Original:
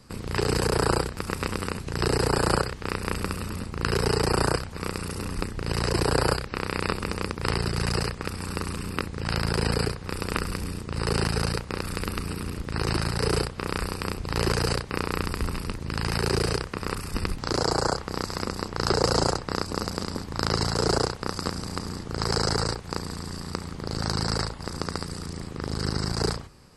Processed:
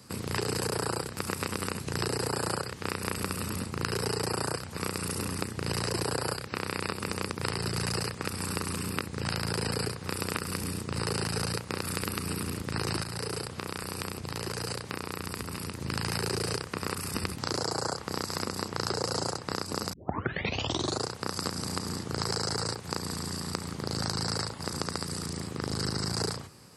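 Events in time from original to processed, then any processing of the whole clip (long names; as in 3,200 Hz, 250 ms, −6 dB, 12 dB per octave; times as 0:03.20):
0:13.03–0:15.78: downward compressor, threshold −30 dBFS
0:19.93: tape start 1.12 s
whole clip: high-pass filter 85 Hz 24 dB per octave; high-shelf EQ 6,900 Hz +9 dB; downward compressor, threshold −27 dBFS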